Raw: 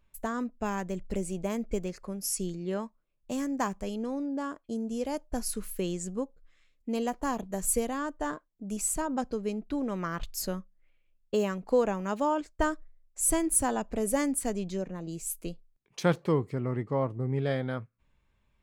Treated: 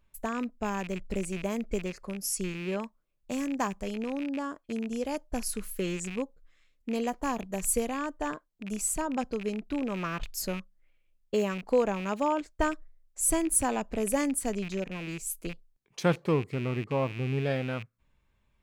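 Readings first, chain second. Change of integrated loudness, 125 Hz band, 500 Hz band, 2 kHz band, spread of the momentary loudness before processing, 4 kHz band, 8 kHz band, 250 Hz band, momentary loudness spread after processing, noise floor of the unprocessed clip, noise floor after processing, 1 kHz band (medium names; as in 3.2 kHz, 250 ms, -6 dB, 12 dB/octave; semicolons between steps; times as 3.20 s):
0.0 dB, 0.0 dB, 0.0 dB, +2.0 dB, 9 LU, +1.5 dB, 0.0 dB, 0.0 dB, 9 LU, -71 dBFS, -71 dBFS, 0.0 dB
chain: rattle on loud lows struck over -41 dBFS, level -31 dBFS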